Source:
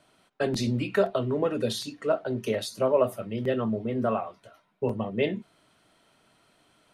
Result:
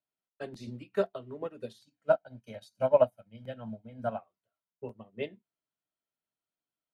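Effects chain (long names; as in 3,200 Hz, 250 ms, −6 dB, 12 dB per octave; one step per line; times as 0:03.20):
0:01.82–0:04.19: comb filter 1.3 ms, depth 86%
expander for the loud parts 2.5 to 1, over −39 dBFS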